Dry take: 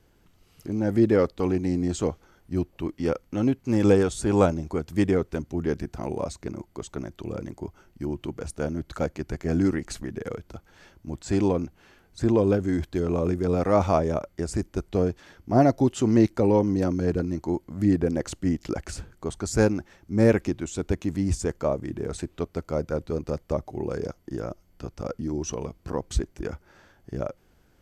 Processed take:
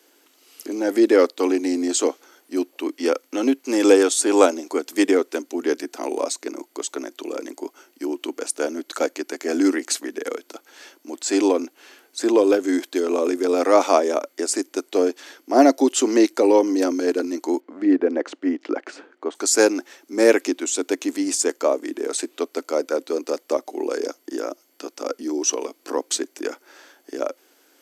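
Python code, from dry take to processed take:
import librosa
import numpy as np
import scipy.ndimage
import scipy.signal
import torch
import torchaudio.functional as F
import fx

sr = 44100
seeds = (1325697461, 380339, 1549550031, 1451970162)

y = fx.lowpass(x, sr, hz=2000.0, slope=12, at=(17.6, 19.35))
y = scipy.signal.sosfilt(scipy.signal.cheby1(5, 1.0, 270.0, 'highpass', fs=sr, output='sos'), y)
y = fx.high_shelf(y, sr, hz=2900.0, db=10.0)
y = F.gain(torch.from_numpy(y), 6.0).numpy()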